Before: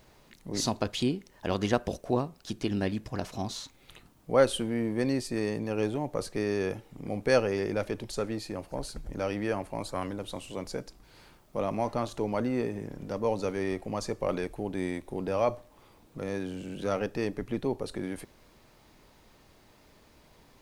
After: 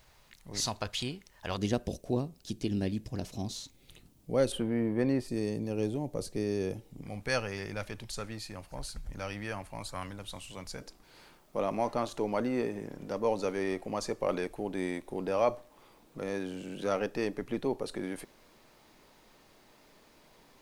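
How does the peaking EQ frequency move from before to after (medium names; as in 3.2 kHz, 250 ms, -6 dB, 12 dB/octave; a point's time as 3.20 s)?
peaking EQ -12 dB 2.1 oct
290 Hz
from 1.57 s 1.2 kHz
from 4.52 s 6.8 kHz
from 5.28 s 1.4 kHz
from 7.02 s 380 Hz
from 10.81 s 61 Hz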